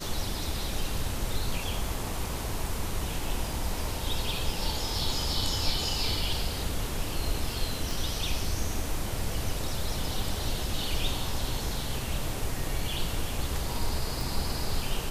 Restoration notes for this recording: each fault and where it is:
7.91 s: pop
14.21 s: pop

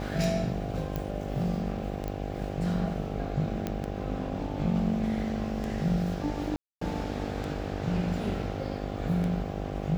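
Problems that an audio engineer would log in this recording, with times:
buzz 50 Hz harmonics 16 -35 dBFS
tick 33 1/3 rpm
0.96 s: pop
2.08 s: pop -21 dBFS
3.67 s: pop -17 dBFS
6.56–6.81 s: dropout 254 ms

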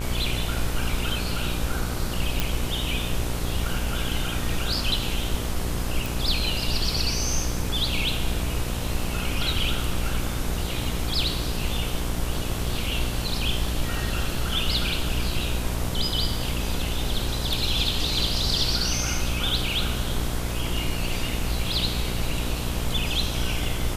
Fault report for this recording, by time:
buzz 60 Hz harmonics 26 -30 dBFS
2.40 s: pop
6.06 s: pop

